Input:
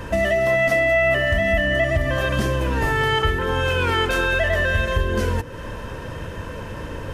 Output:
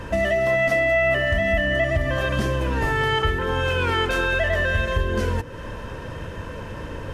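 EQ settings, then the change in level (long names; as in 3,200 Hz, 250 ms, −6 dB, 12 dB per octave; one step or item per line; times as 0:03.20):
high-shelf EQ 10,000 Hz −7 dB
−1.5 dB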